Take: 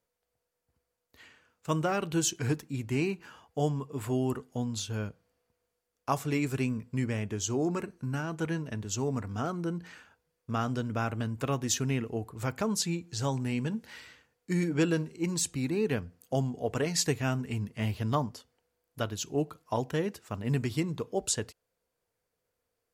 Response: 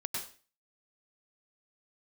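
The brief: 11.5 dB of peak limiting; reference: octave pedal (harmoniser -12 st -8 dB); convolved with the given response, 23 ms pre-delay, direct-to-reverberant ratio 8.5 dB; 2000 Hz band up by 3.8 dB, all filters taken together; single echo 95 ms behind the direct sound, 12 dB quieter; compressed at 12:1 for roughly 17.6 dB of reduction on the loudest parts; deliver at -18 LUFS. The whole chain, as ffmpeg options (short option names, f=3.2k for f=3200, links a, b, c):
-filter_complex "[0:a]equalizer=f=2k:t=o:g=5,acompressor=threshold=-41dB:ratio=12,alimiter=level_in=12.5dB:limit=-24dB:level=0:latency=1,volume=-12.5dB,aecho=1:1:95:0.251,asplit=2[a][b];[1:a]atrim=start_sample=2205,adelay=23[c];[b][c]afir=irnorm=-1:irlink=0,volume=-11dB[d];[a][d]amix=inputs=2:normalize=0,asplit=2[e][f];[f]asetrate=22050,aresample=44100,atempo=2,volume=-8dB[g];[e][g]amix=inputs=2:normalize=0,volume=28.5dB"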